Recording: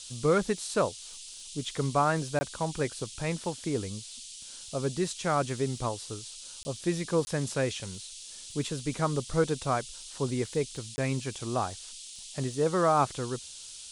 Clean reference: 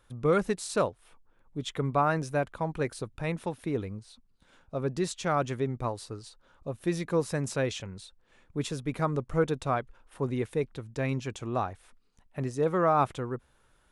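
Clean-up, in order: de-click; interpolate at 2.39/6.63/7.25/10.96, 20 ms; noise print and reduce 18 dB

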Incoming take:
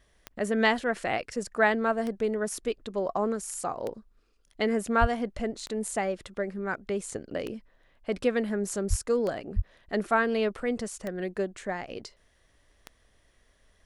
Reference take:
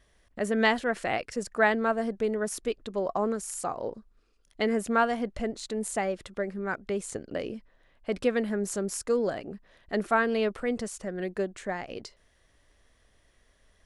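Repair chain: de-click; de-plosive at 5/8.89/9.55

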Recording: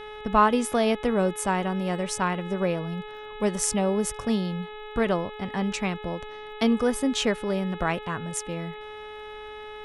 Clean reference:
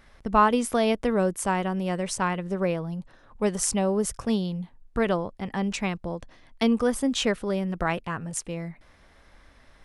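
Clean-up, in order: de-click; de-hum 424.8 Hz, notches 9

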